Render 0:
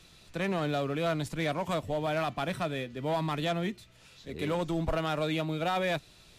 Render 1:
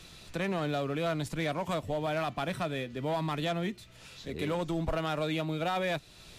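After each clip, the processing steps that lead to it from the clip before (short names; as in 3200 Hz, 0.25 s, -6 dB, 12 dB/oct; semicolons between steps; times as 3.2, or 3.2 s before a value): compressor 1.5:1, threshold -46 dBFS, peak gain reduction 7.5 dB; gain +5.5 dB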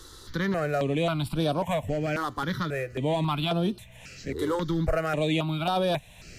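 step phaser 3.7 Hz 670–7000 Hz; gain +7.5 dB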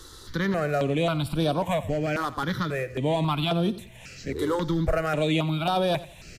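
feedback echo 89 ms, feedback 31%, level -17 dB; gain +1.5 dB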